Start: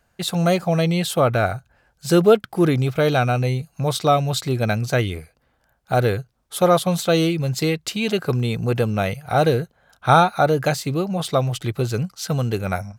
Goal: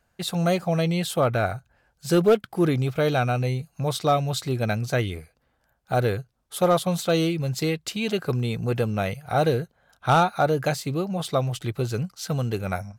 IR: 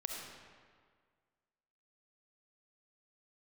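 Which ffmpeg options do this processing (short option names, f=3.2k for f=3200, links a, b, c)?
-af "volume=7.5dB,asoftclip=hard,volume=-7.5dB,volume=-4dB" -ar 48000 -c:a libvorbis -b:a 96k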